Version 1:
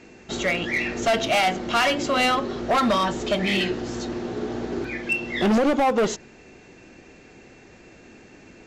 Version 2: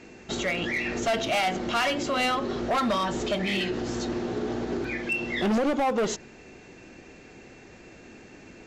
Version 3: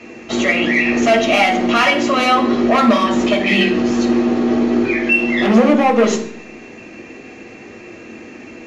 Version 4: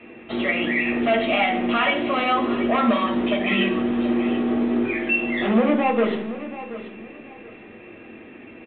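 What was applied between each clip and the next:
peak limiter -21 dBFS, peak gain reduction 5 dB
reverberation RT60 0.65 s, pre-delay 5 ms, DRR 0 dB; trim +1 dB
feedback delay 730 ms, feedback 25%, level -14 dB; trim -7 dB; A-law 64 kbps 8 kHz

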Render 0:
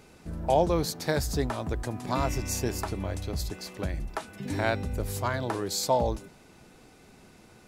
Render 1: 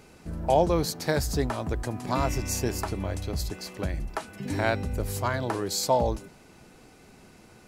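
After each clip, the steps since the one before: band-stop 3.6 kHz, Q 21; trim +1.5 dB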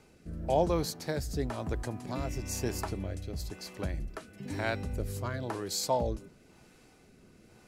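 rotary cabinet horn 1 Hz; trim -4 dB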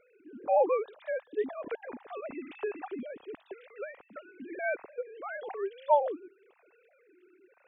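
formants replaced by sine waves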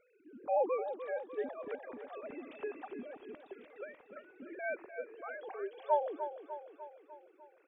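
feedback delay 299 ms, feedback 57%, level -10 dB; trim -6 dB

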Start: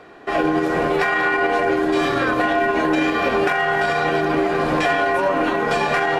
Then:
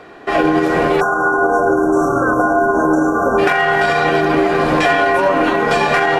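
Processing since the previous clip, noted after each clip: spectral selection erased 1.01–3.39 s, 1.6–5.5 kHz; trim +5 dB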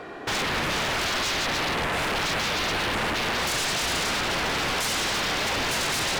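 in parallel at -2 dB: peak limiter -10 dBFS, peak gain reduction 7 dB; on the sum: wavefolder -16.5 dBFS; trim -5 dB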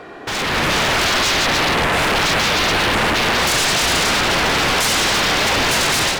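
level rider gain up to 7 dB; trim +2.5 dB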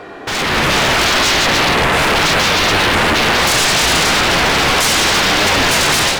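flange 0.37 Hz, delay 9.6 ms, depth 9.8 ms, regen +71%; trim +8 dB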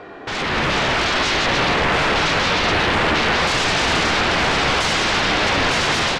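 distance through air 99 m; delay 930 ms -7 dB; trim -4.5 dB

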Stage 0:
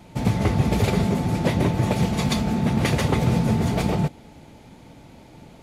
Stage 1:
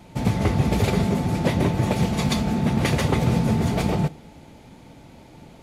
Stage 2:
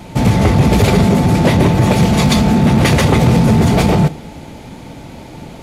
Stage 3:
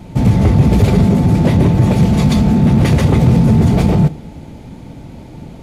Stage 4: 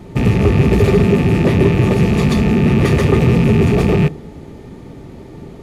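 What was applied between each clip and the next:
reverberation, pre-delay 3 ms, DRR 19 dB
in parallel at 0 dB: peak limiter -17 dBFS, peak gain reduction 7.5 dB; on the sum: saturation -10 dBFS, distortion -19 dB; trim +7.5 dB
bass shelf 400 Hz +10.5 dB; trim -8 dB
rattle on loud lows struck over -15 dBFS, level -14 dBFS; small resonant body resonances 400/1200/1800 Hz, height 11 dB, ringing for 35 ms; trim -3 dB

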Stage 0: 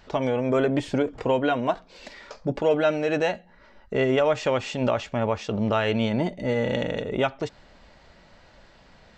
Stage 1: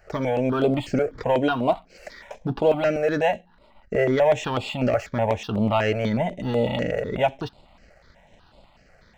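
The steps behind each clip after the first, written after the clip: peaking EQ 730 Hz +4.5 dB 0.88 oct; waveshaping leveller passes 1; stepped phaser 8.1 Hz 970–6000 Hz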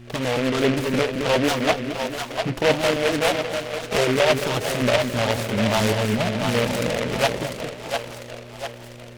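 two-band feedback delay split 500 Hz, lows 219 ms, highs 698 ms, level -5 dB; mains buzz 120 Hz, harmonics 3, -43 dBFS; delay time shaken by noise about 1.9 kHz, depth 0.14 ms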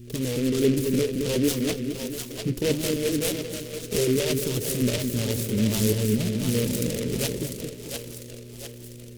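FFT filter 430 Hz 0 dB, 710 Hz -22 dB, 1.5 kHz -16 dB, 12 kHz +8 dB

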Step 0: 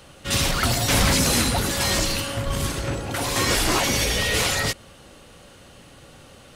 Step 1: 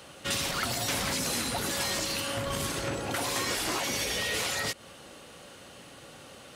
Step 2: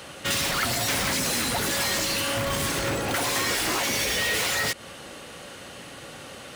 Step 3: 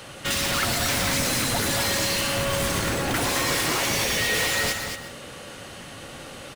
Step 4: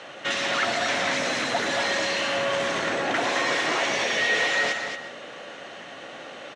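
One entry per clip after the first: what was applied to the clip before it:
high-pass 220 Hz 6 dB/octave; compression, threshold -28 dBFS, peak gain reduction 10.5 dB
in parallel at -5 dB: integer overflow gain 27.5 dB; on the sum: peaking EQ 1.9 kHz +3 dB; trim +3 dB
octave divider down 1 oct, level -2 dB; delay 229 ms -6.5 dB; on a send at -9.5 dB: reverberation RT60 0.35 s, pre-delay 110 ms
cabinet simulation 280–5800 Hz, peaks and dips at 670 Hz +6 dB, 1.8 kHz +4 dB, 4.8 kHz -8 dB

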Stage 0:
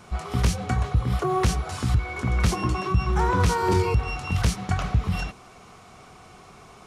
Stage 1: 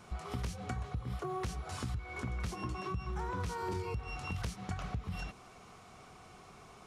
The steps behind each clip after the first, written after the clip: compression 4:1, threshold -29 dBFS, peak gain reduction 11.5 dB; trim -7 dB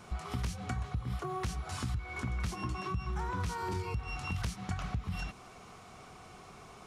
dynamic bell 480 Hz, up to -6 dB, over -56 dBFS, Q 1.5; trim +3 dB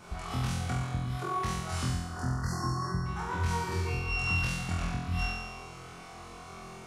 spectral selection erased 1.88–3.06 s, 2–4.2 kHz; on a send: flutter echo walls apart 4 m, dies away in 1.1 s

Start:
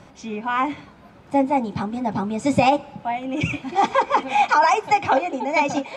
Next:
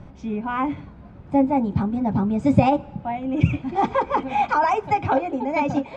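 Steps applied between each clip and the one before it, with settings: RIAA curve playback; trim -3.5 dB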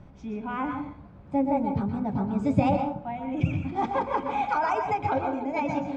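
reverberation RT60 0.50 s, pre-delay 112 ms, DRR 4 dB; trim -7 dB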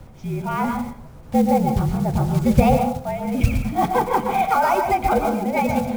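block-companded coder 5-bit; frequency shift -52 Hz; trim +7.5 dB

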